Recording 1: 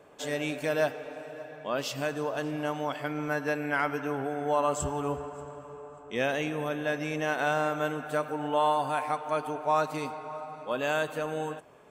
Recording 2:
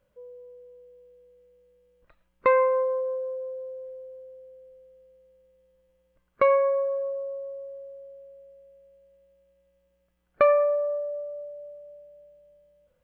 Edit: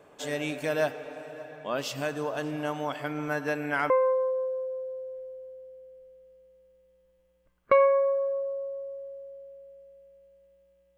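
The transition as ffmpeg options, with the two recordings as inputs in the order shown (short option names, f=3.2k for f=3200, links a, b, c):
-filter_complex "[0:a]apad=whole_dur=10.97,atrim=end=10.97,atrim=end=3.902[a];[1:a]atrim=start=2.598:end=9.67[b];[a][b]acrossfade=d=0.004:c1=hsin:c2=hsin"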